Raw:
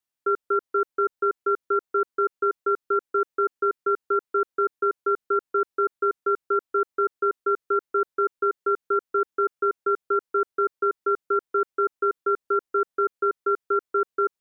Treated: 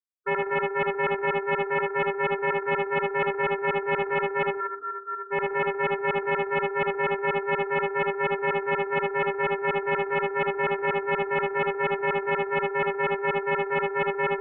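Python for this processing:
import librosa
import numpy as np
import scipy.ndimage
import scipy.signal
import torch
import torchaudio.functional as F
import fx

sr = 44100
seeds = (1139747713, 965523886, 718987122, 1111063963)

y = fx.noise_reduce_blind(x, sr, reduce_db=19)
y = fx.double_bandpass(y, sr, hz=930.0, octaves=0.82, at=(4.51, 5.18))
y = y + 10.0 ** (-3.5 / 20.0) * np.pad(y, (int(76 * sr / 1000.0), 0))[:len(y)]
y = fx.room_shoebox(y, sr, seeds[0], volume_m3=700.0, walls='mixed', distance_m=1.6)
y = fx.doppler_dist(y, sr, depth_ms=0.42)
y = F.gain(torch.from_numpy(y), -6.0).numpy()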